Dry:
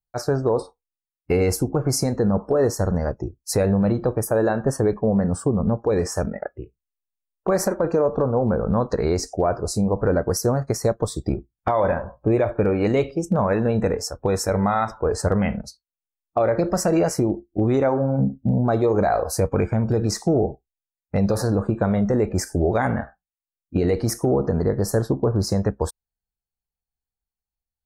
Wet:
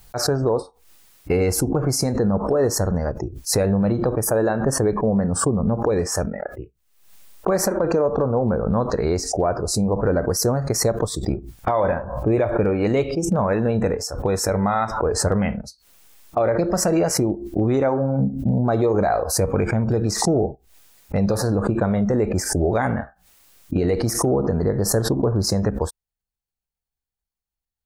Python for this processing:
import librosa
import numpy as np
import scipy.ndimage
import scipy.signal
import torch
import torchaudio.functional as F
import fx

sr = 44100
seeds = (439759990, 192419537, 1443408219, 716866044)

y = fx.pre_swell(x, sr, db_per_s=75.0)